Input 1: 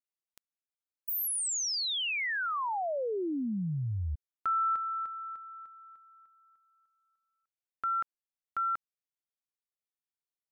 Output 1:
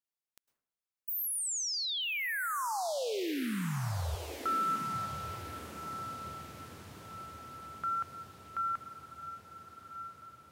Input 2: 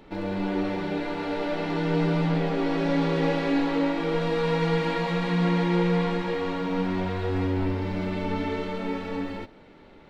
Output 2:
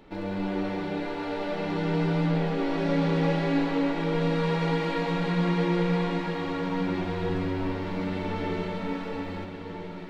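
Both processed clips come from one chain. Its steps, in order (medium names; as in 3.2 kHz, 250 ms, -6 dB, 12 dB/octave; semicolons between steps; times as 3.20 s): echo that smears into a reverb 1263 ms, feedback 59%, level -10 dB; plate-style reverb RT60 0.73 s, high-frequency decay 0.4×, pre-delay 95 ms, DRR 11.5 dB; trim -2.5 dB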